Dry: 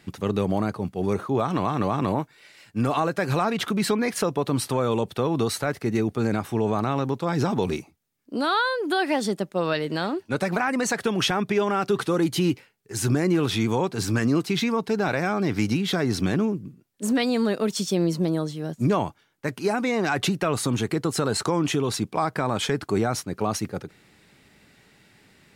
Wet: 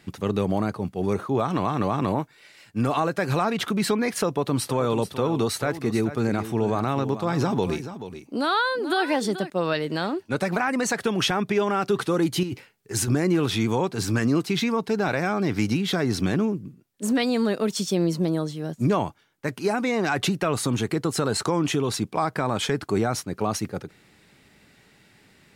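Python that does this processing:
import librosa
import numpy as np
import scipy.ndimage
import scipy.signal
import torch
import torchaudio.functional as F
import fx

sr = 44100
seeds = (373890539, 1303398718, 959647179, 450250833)

y = fx.echo_single(x, sr, ms=432, db=-12.0, at=(4.26, 9.5))
y = fx.over_compress(y, sr, threshold_db=-27.0, ratio=-1.0, at=(12.43, 13.08))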